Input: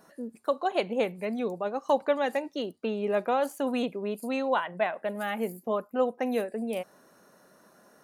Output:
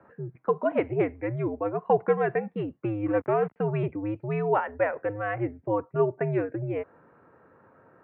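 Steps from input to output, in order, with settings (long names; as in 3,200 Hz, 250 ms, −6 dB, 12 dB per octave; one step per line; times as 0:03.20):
0:03.06–0:03.56: slack as between gear wheels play −30.5 dBFS
single-sideband voice off tune −100 Hz 220–2,300 Hz
level +2.5 dB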